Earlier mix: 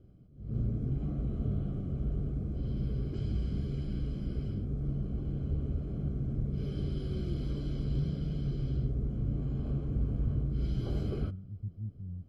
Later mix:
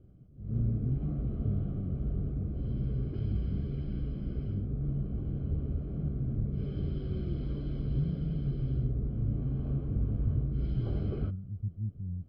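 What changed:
speech +4.0 dB
background: add high-frequency loss of the air 260 metres

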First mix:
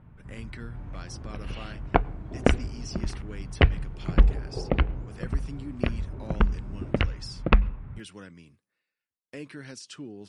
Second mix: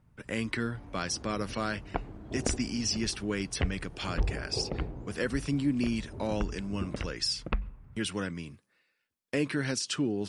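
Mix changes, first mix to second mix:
speech +11.0 dB
second sound −12.0 dB

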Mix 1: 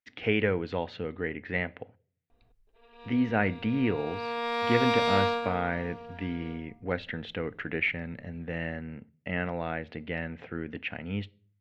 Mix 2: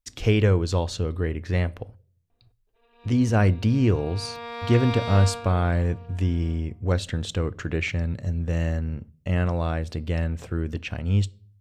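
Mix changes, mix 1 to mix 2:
speech: remove loudspeaker in its box 250–2,900 Hz, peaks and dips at 360 Hz −7 dB, 580 Hz −5 dB, 1,100 Hz −9 dB, 2,000 Hz +6 dB
background −5.0 dB

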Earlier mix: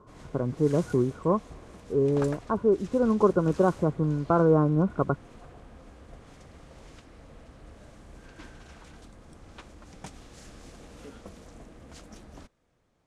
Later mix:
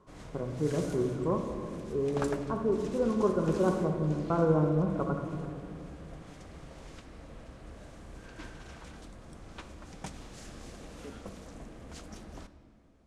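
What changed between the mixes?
speech −10.0 dB
reverb: on, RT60 2.3 s

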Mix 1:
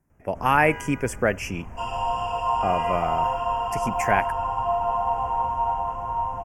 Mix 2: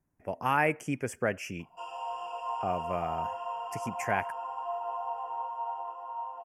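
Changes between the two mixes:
speech −7.5 dB
first sound: muted
second sound −11.0 dB

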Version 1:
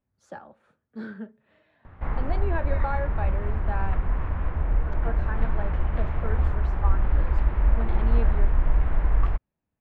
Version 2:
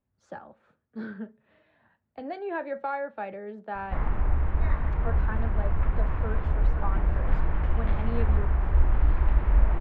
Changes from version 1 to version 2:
speech: add high-frequency loss of the air 68 metres
background: entry +1.90 s

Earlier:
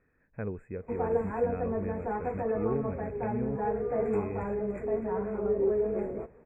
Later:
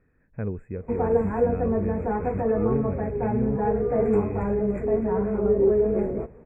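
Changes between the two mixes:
background +3.5 dB
master: add low-shelf EQ 340 Hz +8.5 dB

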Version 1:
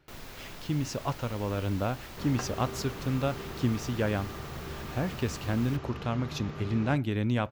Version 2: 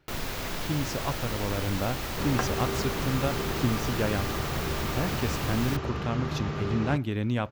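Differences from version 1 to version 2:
first sound +11.5 dB
second sound +8.0 dB

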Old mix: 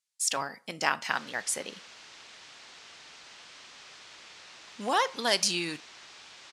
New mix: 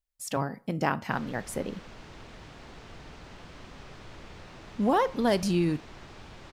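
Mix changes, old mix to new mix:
background +4.5 dB
master: remove meter weighting curve ITU-R 468

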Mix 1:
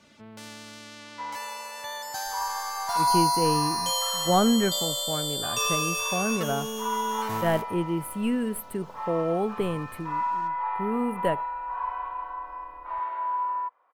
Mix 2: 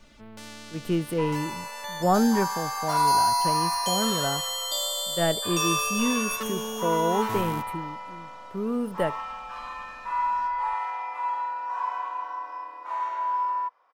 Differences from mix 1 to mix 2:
speech: entry −2.25 s
second sound: remove high-frequency loss of the air 350 metres

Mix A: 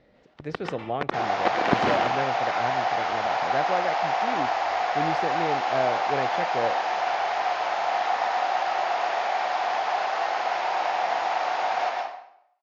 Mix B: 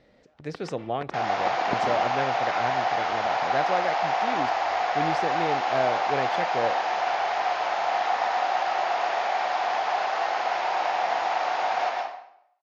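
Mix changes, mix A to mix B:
speech: remove low-pass filter 3,300 Hz 6 dB per octave
first sound −9.0 dB

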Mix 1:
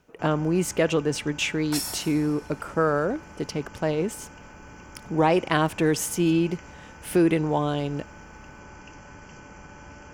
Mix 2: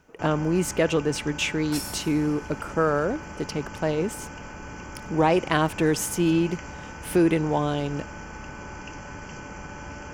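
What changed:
first sound +6.5 dB
second sound −4.0 dB

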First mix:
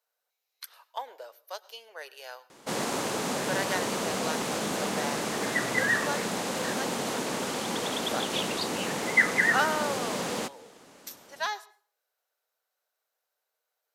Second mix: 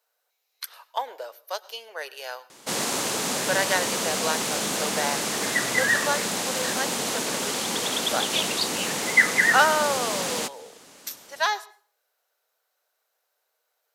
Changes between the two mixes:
speech +7.5 dB
background: add high-shelf EQ 2,300 Hz +9.5 dB

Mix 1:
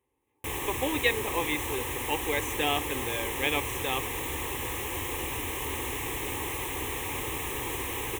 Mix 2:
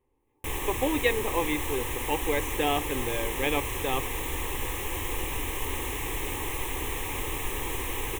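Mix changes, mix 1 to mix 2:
speech: add tilt shelving filter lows +4.5 dB, about 1,400 Hz
master: remove high-pass filter 64 Hz

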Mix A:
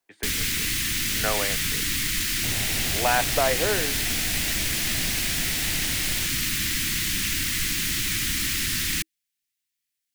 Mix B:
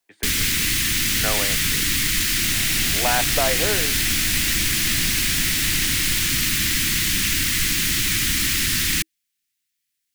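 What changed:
first sound +5.0 dB
second sound −5.0 dB

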